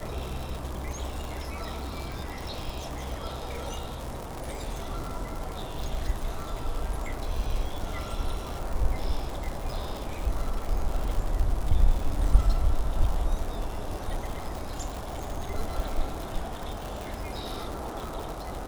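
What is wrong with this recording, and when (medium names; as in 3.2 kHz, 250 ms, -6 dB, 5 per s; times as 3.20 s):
crackle 160 per s -31 dBFS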